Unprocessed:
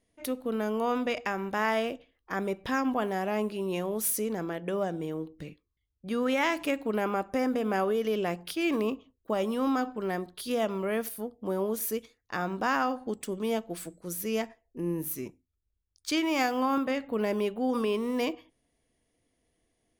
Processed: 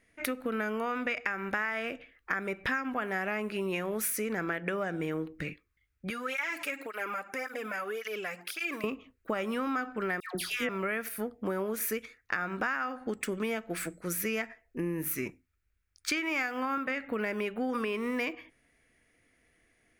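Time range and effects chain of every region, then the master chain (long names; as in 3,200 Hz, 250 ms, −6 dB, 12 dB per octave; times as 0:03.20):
0:06.10–0:08.84: bass and treble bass −14 dB, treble +8 dB + downward compressor 3 to 1, threshold −39 dBFS + through-zero flanger with one copy inverted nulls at 1.8 Hz, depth 3 ms
0:10.20–0:10.69: all-pass dispersion lows, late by 149 ms, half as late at 1,200 Hz + one half of a high-frequency compander encoder only
whole clip: flat-topped bell 1,800 Hz +12 dB 1.2 octaves; downward compressor 12 to 1, threshold −32 dBFS; level +3.5 dB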